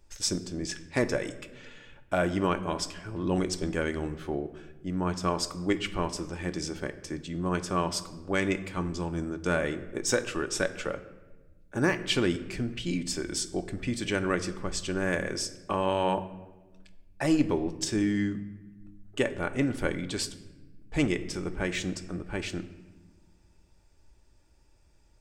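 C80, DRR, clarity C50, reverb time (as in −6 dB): 16.0 dB, 9.5 dB, 14.0 dB, 1.2 s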